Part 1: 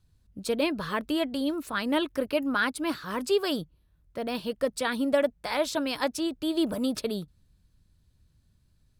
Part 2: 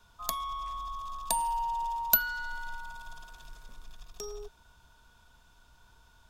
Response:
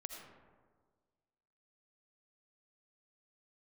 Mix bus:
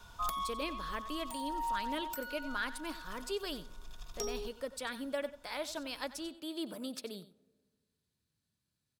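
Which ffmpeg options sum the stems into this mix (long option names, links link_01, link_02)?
-filter_complex "[0:a]highpass=150,tiltshelf=frequency=1400:gain=-3,volume=-11.5dB,asplit=4[link_01][link_02][link_03][link_04];[link_02]volume=-16dB[link_05];[link_03]volume=-15dB[link_06];[1:a]aeval=exprs='0.422*(cos(1*acos(clip(val(0)/0.422,-1,1)))-cos(1*PI/2))+0.188*(cos(7*acos(clip(val(0)/0.422,-1,1)))-cos(7*PI/2))':channel_layout=same,alimiter=limit=-19.5dB:level=0:latency=1:release=434,volume=0.5dB,asplit=2[link_07][link_08];[link_08]volume=-23dB[link_09];[link_04]apad=whole_len=277795[link_10];[link_07][link_10]sidechaincompress=threshold=-45dB:ratio=8:attack=16:release=1260[link_11];[2:a]atrim=start_sample=2205[link_12];[link_05][link_12]afir=irnorm=-1:irlink=0[link_13];[link_06][link_09]amix=inputs=2:normalize=0,aecho=0:1:92:1[link_14];[link_01][link_11][link_13][link_14]amix=inputs=4:normalize=0"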